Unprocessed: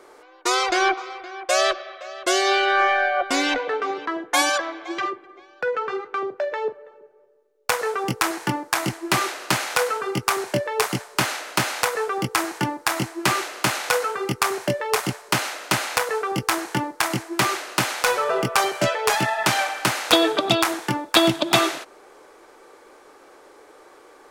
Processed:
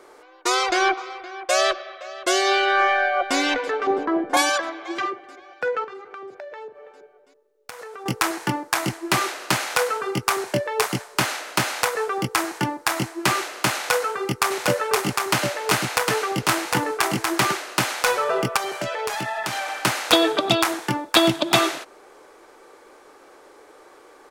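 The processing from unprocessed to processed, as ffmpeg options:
ffmpeg -i in.wav -filter_complex "[0:a]asplit=2[link_01][link_02];[link_02]afade=type=in:start_time=2.8:duration=0.01,afade=type=out:start_time=3.37:duration=0.01,aecho=0:1:330|660|990|1320|1650|1980|2310|2640|2970|3300|3630|3960:0.125893|0.100714|0.0805712|0.064457|0.0515656|0.0412525|0.033002|0.0264016|0.0211213|0.016897|0.0135176|0.0108141[link_03];[link_01][link_03]amix=inputs=2:normalize=0,asettb=1/sr,asplit=3[link_04][link_05][link_06];[link_04]atrim=end=3.874[link_07];[link_05]atrim=start=3.87:end=4.37,asetpts=PTS-STARTPTS,afade=type=in:duration=0.004:curve=qsin,afade=type=out:start_time=0.496:duration=0.004:curve=qsin,tiltshelf=frequency=1200:gain=10[link_08];[link_06]atrim=start=4.366[link_09];[link_07][link_08]acrossfade=duration=0.004:curve1=hsin:curve2=qsin[link_10];[link_10][link_09]acrossfade=duration=0.004:curve1=qsin:curve2=hsin,asettb=1/sr,asplit=3[link_11][link_12][link_13];[link_11]atrim=end=5.844[link_14];[link_12]atrim=start=5.84:end=8.06,asetpts=PTS-STARTPTS,afade=type=in:duration=0.004:curve=qsin,afade=type=out:start_time=2.216:duration=0.004:curve=qsin,acompressor=threshold=-35dB:ratio=6:attack=3.2:release=140:knee=1:detection=peak[link_15];[link_13]atrim=start=8.056[link_16];[link_14][link_15]acrossfade=duration=0.004:curve1=hsin:curve2=qsin[link_17];[link_17][link_16]acrossfade=duration=0.004:curve1=qsin:curve2=hsin,asplit=3[link_18][link_19][link_20];[link_18]afade=type=out:start_time=14.5:duration=0.02[link_21];[link_19]aecho=1:1:756:0.708,afade=type=in:start_time=14.5:duration=0.02,afade=type=out:start_time=17.51:duration=0.02[link_22];[link_20]afade=type=in:start_time=17.51:duration=0.02[link_23];[link_21][link_22][link_23]amix=inputs=3:normalize=0,asplit=3[link_24][link_25][link_26];[link_24]afade=type=out:start_time=18.56:duration=0.02[link_27];[link_25]acompressor=threshold=-23dB:ratio=6:attack=3.2:release=140:knee=1:detection=peak,afade=type=in:start_time=18.56:duration=0.02,afade=type=out:start_time=19.73:duration=0.02[link_28];[link_26]afade=type=in:start_time=19.73:duration=0.02[link_29];[link_27][link_28][link_29]amix=inputs=3:normalize=0" out.wav

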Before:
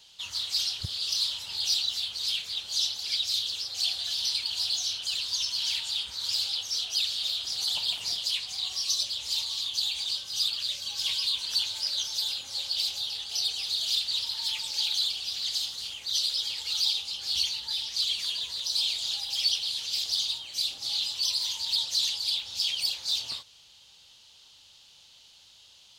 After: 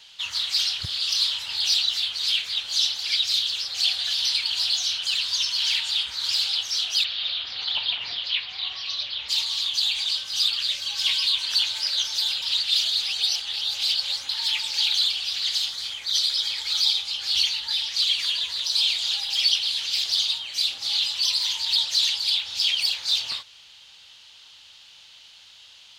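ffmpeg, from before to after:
ffmpeg -i in.wav -filter_complex "[0:a]asplit=3[link_01][link_02][link_03];[link_01]afade=type=out:start_time=7.03:duration=0.02[link_04];[link_02]lowpass=frequency=3700:width=0.5412,lowpass=frequency=3700:width=1.3066,afade=type=in:start_time=7.03:duration=0.02,afade=type=out:start_time=9.28:duration=0.02[link_05];[link_03]afade=type=in:start_time=9.28:duration=0.02[link_06];[link_04][link_05][link_06]amix=inputs=3:normalize=0,asettb=1/sr,asplit=3[link_07][link_08][link_09];[link_07]atrim=end=15.704[link_10];[link_08]atrim=start=15.7:end=17.07,asetpts=PTS-STARTPTS,afade=type=in:duration=0.004:curve=qsin,afade=type=out:start_time=1.366:duration=0.004:curve=qsin,bandreject=frequency=2800:width=6.9[link_11];[link_09]atrim=start=17.066[link_12];[link_10][link_11]acrossfade=duration=0.004:curve1=hsin:curve2=qsin[link_13];[link_13][link_12]acrossfade=duration=0.004:curve1=qsin:curve2=hsin,asplit=3[link_14][link_15][link_16];[link_14]atrim=end=12.422[link_17];[link_15]atrim=start=12.418:end=14.292,asetpts=PTS-STARTPTS,areverse[link_18];[link_16]atrim=start=14.288[link_19];[link_17][link_18]acrossfade=duration=0.004:curve1=hsin:curve2=hsin[link_20];[link_20][link_19]acrossfade=duration=0.004:curve1=hsin:curve2=hsin,equalizer=frequency=1900:width_type=o:width=2.1:gain=11.5" out.wav

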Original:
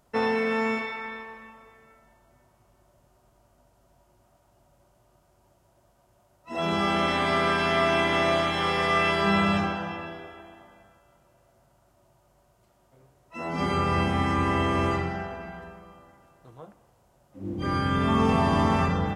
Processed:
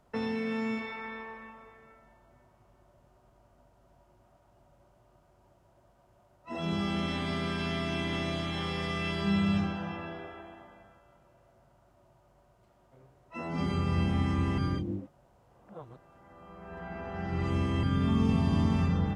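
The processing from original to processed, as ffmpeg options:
ffmpeg -i in.wav -filter_complex "[0:a]asplit=3[link_01][link_02][link_03];[link_01]atrim=end=14.582[link_04];[link_02]atrim=start=14.578:end=17.832,asetpts=PTS-STARTPTS,areverse[link_05];[link_03]atrim=start=17.828[link_06];[link_04][link_05]acrossfade=duration=0.004:curve1=hsin:curve2=hsin[link_07];[link_07][link_06]acrossfade=duration=0.004:curve1=hsin:curve2=hsin,highshelf=frequency=4800:gain=-11.5,acrossover=split=280|3000[link_08][link_09][link_10];[link_09]acompressor=threshold=-38dB:ratio=10[link_11];[link_08][link_11][link_10]amix=inputs=3:normalize=0" out.wav

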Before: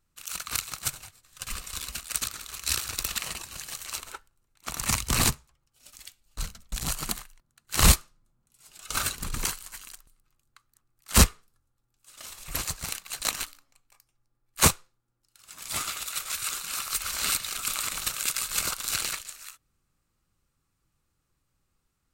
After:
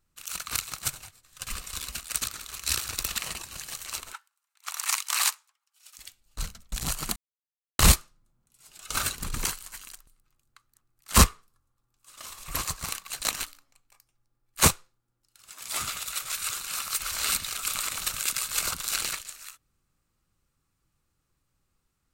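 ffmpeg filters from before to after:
ffmpeg -i in.wav -filter_complex "[0:a]asettb=1/sr,asplit=3[link_01][link_02][link_03];[link_01]atrim=end=4.134[link_04];[link_02]atrim=start=4.13:end=5.98,asetpts=PTS-STARTPTS,afade=type=in:duration=0.004:curve=qsin,afade=type=out:start_time=1.846:duration=0.004:curve=qsin,highpass=frequency=900:width=0.5412,highpass=frequency=900:width=1.3066[link_05];[link_03]atrim=start=5.976[link_06];[link_04][link_05]acrossfade=duration=0.004:curve1=hsin:curve2=qsin[link_07];[link_07][link_06]acrossfade=duration=0.004:curve1=qsin:curve2=hsin,asettb=1/sr,asplit=3[link_08][link_09][link_10];[link_08]atrim=end=11.164[link_11];[link_09]atrim=start=11.16:end=13.08,asetpts=PTS-STARTPTS,afade=type=in:duration=0.004:curve=qsin,afade=type=out:start_time=1.916:duration=0.004:curve=qsin,equalizer=frequency=1100:width_type=o:width=0.32:gain=8[link_12];[link_10]atrim=start=13.076[link_13];[link_11][link_12]acrossfade=duration=0.004:curve1=hsin:curve2=qsin[link_14];[link_14][link_13]acrossfade=duration=0.004:curve1=qsin:curve2=hsin,asettb=1/sr,asplit=3[link_15][link_16][link_17];[link_15]atrim=end=15.524[link_18];[link_16]atrim=start=15.52:end=19.01,asetpts=PTS-STARTPTS,afade=type=in:duration=0.004:curve=qsin,afade=type=out:start_time=3.486:duration=0.004:curve=qsin,acrossover=split=270[link_19][link_20];[link_19]adelay=70[link_21];[link_21][link_20]amix=inputs=2:normalize=0,atrim=end_sample=153909[link_22];[link_17]atrim=start=19.006[link_23];[link_18][link_22]acrossfade=duration=0.004:curve1=hsin:curve2=qsin[link_24];[link_24][link_23]acrossfade=duration=0.004:curve1=qsin:curve2=hsin,asplit=3[link_25][link_26][link_27];[link_25]atrim=end=7.16,asetpts=PTS-STARTPTS,afade=type=out:start_time=7.156:duration=0.004:curve=hsin[link_28];[link_26]atrim=start=7.16:end=7.79,asetpts=PTS-STARTPTS,volume=0[link_29];[link_27]atrim=start=7.79,asetpts=PTS-STARTPTS,afade=type=in:duration=0.004:curve=hsin[link_30];[link_28][link_29][link_30]concat=n=3:v=0:a=1" out.wav

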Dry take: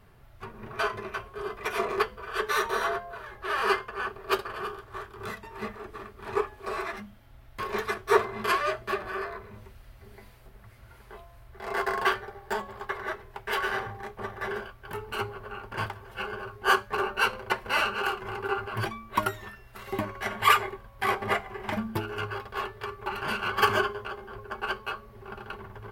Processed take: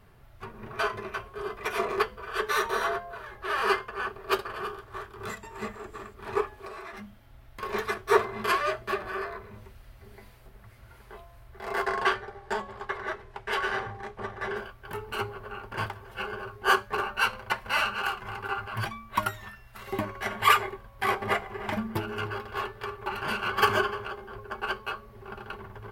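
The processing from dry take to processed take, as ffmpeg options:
ffmpeg -i in.wav -filter_complex "[0:a]asettb=1/sr,asplit=3[link_01][link_02][link_03];[link_01]atrim=end=5.294[link_04];[link_02]atrim=start=5.29:end=6.14,asetpts=PTS-STARTPTS,afade=type=in:duration=0.004:curve=qsin,afade=type=out:start_time=0.846:duration=0.004:curve=qsin,equalizer=frequency=7400:width_type=o:width=0.2:gain=14.5[link_05];[link_03]atrim=start=6.136[link_06];[link_04][link_05]acrossfade=duration=0.004:curve1=hsin:curve2=qsin[link_07];[link_07][link_06]acrossfade=duration=0.004:curve1=qsin:curve2=hsin,asettb=1/sr,asplit=3[link_08][link_09][link_10];[link_08]atrim=end=6.664[link_11];[link_09]atrim=start=6.66:end=7.63,asetpts=PTS-STARTPTS,afade=type=in:duration=0.004:curve=qsin,afade=type=out:start_time=0.966:duration=0.004:curve=qsin,acompressor=threshold=-37dB:ratio=10:attack=3.2:release=140:knee=1:detection=peak[link_12];[link_10]atrim=start=7.626[link_13];[link_11][link_12]acrossfade=duration=0.004:curve1=hsin:curve2=qsin[link_14];[link_14][link_13]acrossfade=duration=0.004:curve1=qsin:curve2=hsin,asettb=1/sr,asplit=3[link_15][link_16][link_17];[link_15]atrim=end=11.864[link_18];[link_16]atrim=start=11.86:end=14.57,asetpts=PTS-STARTPTS,afade=type=in:duration=0.004:curve=qsin,afade=type=out:start_time=2.706:duration=0.004:curve=qsin,lowpass=8500[link_19];[link_17]atrim=start=14.566[link_20];[link_18][link_19]acrossfade=duration=0.004:curve1=hsin:curve2=qsin[link_21];[link_21][link_20]acrossfade=duration=0.004:curve1=qsin:curve2=hsin,asettb=1/sr,asplit=3[link_22][link_23][link_24];[link_22]atrim=end=17.004[link_25];[link_23]atrim=start=17:end=19.81,asetpts=PTS-STARTPTS,afade=type=in:duration=0.004:curve=qsin,afade=type=out:start_time=2.806:duration=0.004:curve=qsin,equalizer=frequency=380:width_type=o:width=0.85:gain=-9.5[link_26];[link_24]atrim=start=19.806[link_27];[link_25][link_26]acrossfade=duration=0.004:curve1=hsin:curve2=qsin[link_28];[link_28][link_27]acrossfade=duration=0.004:curve1=qsin:curve2=hsin,asettb=1/sr,asplit=3[link_29][link_30][link_31];[link_29]atrim=end=21.124[link_32];[link_30]atrim=start=21.12:end=24.05,asetpts=PTS-STARTPTS,afade=type=in:duration=0.004:curve=qsin,afade=type=out:start_time=2.926:duration=0.004:curve=qsin,asplit=2[link_33][link_34];[link_34]adelay=299,lowpass=frequency=2500:poles=1,volume=-14dB,asplit=2[link_35][link_36];[link_36]adelay=299,lowpass=frequency=2500:poles=1,volume=0.3,asplit=2[link_37][link_38];[link_38]adelay=299,lowpass=frequency=2500:poles=1,volume=0.3[link_39];[link_33][link_35][link_37][link_39]amix=inputs=4:normalize=0,atrim=end_sample=129213[link_40];[link_31]atrim=start=24.046[link_41];[link_32][link_40]acrossfade=duration=0.004:curve1=hsin:curve2=qsin[link_42];[link_42][link_41]acrossfade=duration=0.004:curve1=qsin:curve2=hsin" out.wav

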